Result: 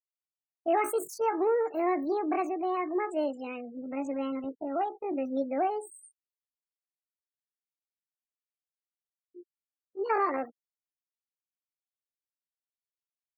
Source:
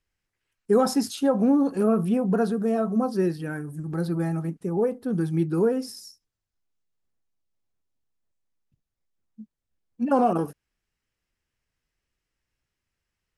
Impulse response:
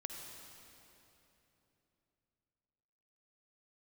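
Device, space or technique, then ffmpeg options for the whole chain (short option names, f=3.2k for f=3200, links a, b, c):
chipmunk voice: -filter_complex "[0:a]asettb=1/sr,asplit=3[a][b][c];[a]atrim=end=4.454[d];[b]atrim=start=4.45:end=5.93,asetpts=PTS-STARTPTS,afade=t=in:d=0.004:c=qsin,afade=t=out:st=1.476:d=0.004:c=qsin,agate=range=-11dB:threshold=-35dB:ratio=16:detection=peak[e];[c]atrim=start=5.926[f];[d][e]acrossfade=d=0.004:c1=hsin:c2=qsin[g];[g][f]acrossfade=d=0.004:c1=qsin:c2=hsin,afftfilt=real='re*gte(hypot(re,im),0.0126)':imag='im*gte(hypot(re,im),0.0126)':win_size=1024:overlap=0.75,asetrate=72056,aresample=44100,atempo=0.612027,volume=-6.5dB"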